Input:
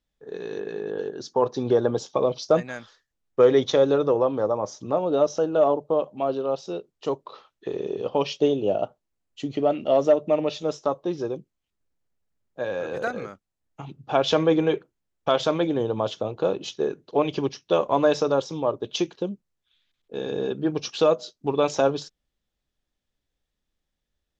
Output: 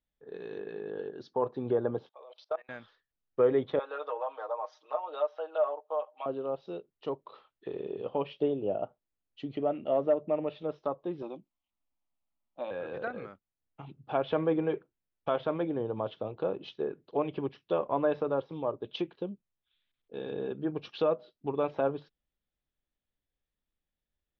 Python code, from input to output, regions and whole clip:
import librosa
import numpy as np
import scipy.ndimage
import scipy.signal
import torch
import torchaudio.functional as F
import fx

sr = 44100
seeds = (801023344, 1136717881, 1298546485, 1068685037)

y = fx.chain(x, sr, fx.env_lowpass(base_hz=1900.0, full_db=-15.5),
    fx.highpass(hz=580.0, slope=24),
    fx.level_steps(step_db=21), at=(2.09, 2.69))
y = fx.chain(y, sr, fx.highpass(hz=660.0, slope=24),
    fx.comb(ms=6.5, depth=0.89), at=(3.79, 6.26))
y = fx.chain(y, sr, fx.peak_eq(hz=1600.0, db=11.5, octaves=2.1),
    fx.fixed_phaser(hz=440.0, stages=6), at=(11.22, 12.71))
y = fx.env_lowpass_down(y, sr, base_hz=2100.0, full_db=-21.0)
y = scipy.signal.sosfilt(scipy.signal.butter(4, 3800.0, 'lowpass', fs=sr, output='sos'), y)
y = y * librosa.db_to_amplitude(-8.0)